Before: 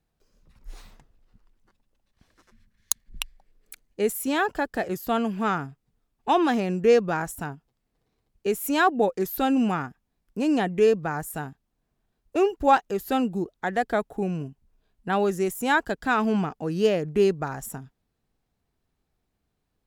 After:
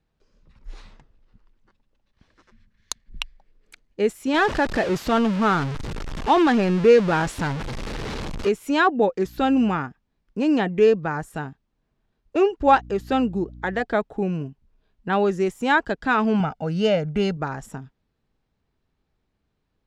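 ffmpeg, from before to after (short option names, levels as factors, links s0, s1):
-filter_complex "[0:a]asettb=1/sr,asplit=3[s0][s1][s2];[s0]atrim=end=4.344[s3];[s1]atrim=start=4.34:end=8.49,asetpts=PTS-STARTPTS,afade=t=in:d=0.004:c=qsin,afade=t=out:st=4.146:d=0.004:c=qsin,aeval=exprs='val(0)+0.5*0.0501*sgn(val(0))':c=same[s4];[s2]atrim=start=8.486[s5];[s3][s4]acrossfade=d=0.004:c1=hsin:c2=qsin[s6];[s6][s5]acrossfade=d=0.004:c1=qsin:c2=hsin,asettb=1/sr,asplit=3[s7][s8][s9];[s7]atrim=end=9.244[s10];[s8]atrim=start=9.24:end=9.78,asetpts=PTS-STARTPTS,afade=t=in:d=0.004:c=qsin,afade=t=out:st=0.536:d=0.004:c=qsin,aeval=exprs='val(0)+0.00398*(sin(2*PI*60*n/s)+sin(2*PI*2*60*n/s)/2+sin(2*PI*3*60*n/s)/3+sin(2*PI*4*60*n/s)/4+sin(2*PI*5*60*n/s)/5)':c=same[s11];[s9]atrim=start=9.776[s12];[s10][s11]acrossfade=d=0.004:c1=hsin:c2=qsin[s13];[s13][s12]acrossfade=d=0.004:c1=qsin:c2=hsin,asettb=1/sr,asplit=3[s14][s15][s16];[s14]atrim=end=12.654[s17];[s15]atrim=start=12.65:end=13.82,asetpts=PTS-STARTPTS,afade=t=in:d=0.004:c=qsin,afade=t=out:st=1.166:d=0.004:c=qsin,aeval=exprs='val(0)+0.00708*(sin(2*PI*60*n/s)+sin(2*PI*2*60*n/s)/2+sin(2*PI*3*60*n/s)/3+sin(2*PI*4*60*n/s)/4+sin(2*PI*5*60*n/s)/5)':c=same[s18];[s16]atrim=start=13.816[s19];[s17][s18]acrossfade=d=0.004:c1=hsin:c2=qsin[s20];[s20][s19]acrossfade=d=0.004:c1=qsin:c2=hsin,asettb=1/sr,asplit=3[s21][s22][s23];[s21]atrim=end=16.404[s24];[s22]atrim=start=16.4:end=17.37,asetpts=PTS-STARTPTS,afade=t=in:d=0.004:c=qsin,afade=t=out:st=0.966:d=0.004:c=qsin,aecho=1:1:1.4:0.71,atrim=end_sample=42777[s25];[s23]atrim=start=17.366[s26];[s24][s25]acrossfade=d=0.004:c1=hsin:c2=qsin[s27];[s27][s26]acrossfade=d=0.004:c1=qsin:c2=hsin,lowpass=4800,bandreject=f=720:w=13,volume=1.41"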